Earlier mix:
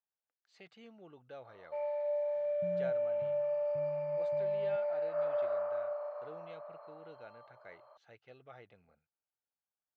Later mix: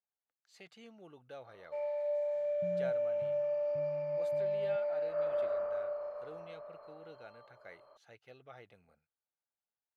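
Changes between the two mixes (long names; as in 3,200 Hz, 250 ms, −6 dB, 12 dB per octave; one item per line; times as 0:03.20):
first sound: remove high-pass with resonance 730 Hz, resonance Q 1.6
master: remove high-frequency loss of the air 120 metres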